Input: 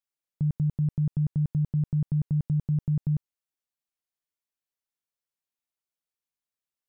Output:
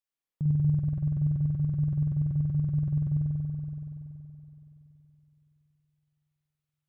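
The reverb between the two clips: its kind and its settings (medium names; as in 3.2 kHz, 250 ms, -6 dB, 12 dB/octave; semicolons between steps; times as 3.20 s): spring tank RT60 3.5 s, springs 47 ms, chirp 25 ms, DRR -4.5 dB; trim -4 dB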